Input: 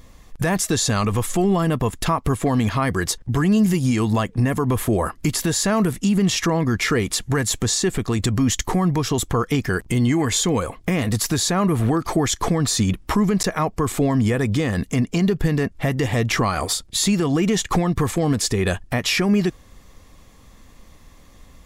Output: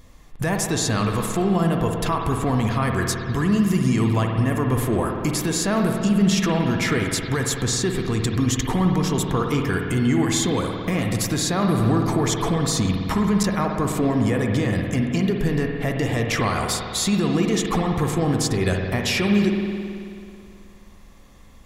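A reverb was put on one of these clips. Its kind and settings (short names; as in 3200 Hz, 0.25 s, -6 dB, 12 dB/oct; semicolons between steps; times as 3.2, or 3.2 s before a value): spring tank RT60 2.4 s, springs 54 ms, chirp 50 ms, DRR 2 dB; gain -3 dB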